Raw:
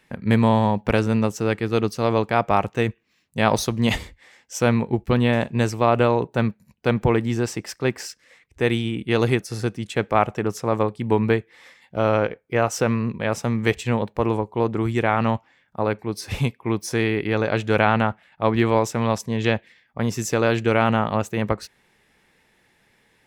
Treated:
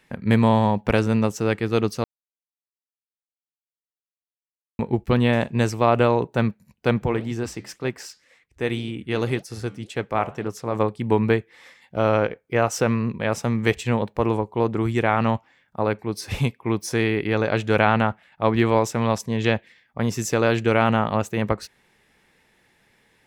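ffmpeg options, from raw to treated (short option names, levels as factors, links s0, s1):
-filter_complex "[0:a]asplit=3[s0][s1][s2];[s0]afade=t=out:st=7.01:d=0.02[s3];[s1]flanger=delay=2.4:depth=10:regen=-80:speed=1.9:shape=sinusoidal,afade=t=in:st=7.01:d=0.02,afade=t=out:st=10.74:d=0.02[s4];[s2]afade=t=in:st=10.74:d=0.02[s5];[s3][s4][s5]amix=inputs=3:normalize=0,asplit=3[s6][s7][s8];[s6]atrim=end=2.04,asetpts=PTS-STARTPTS,afade=t=out:st=2.036:d=0.004:c=hsin[s9];[s7]atrim=start=2.04:end=4.79,asetpts=PTS-STARTPTS,volume=0[s10];[s8]atrim=start=4.79,asetpts=PTS-STARTPTS,afade=t=in:d=0.004:c=hsin[s11];[s9][s10][s11]concat=n=3:v=0:a=1"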